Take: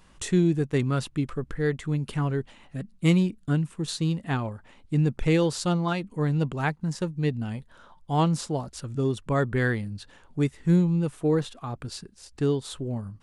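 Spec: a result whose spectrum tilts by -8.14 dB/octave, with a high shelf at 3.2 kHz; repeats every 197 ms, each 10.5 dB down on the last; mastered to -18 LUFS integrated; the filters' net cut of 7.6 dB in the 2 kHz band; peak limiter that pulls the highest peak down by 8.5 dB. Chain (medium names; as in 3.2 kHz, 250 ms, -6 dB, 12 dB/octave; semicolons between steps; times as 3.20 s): peaking EQ 2 kHz -9 dB; treble shelf 3.2 kHz -3.5 dB; peak limiter -19 dBFS; feedback delay 197 ms, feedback 30%, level -10.5 dB; trim +11.5 dB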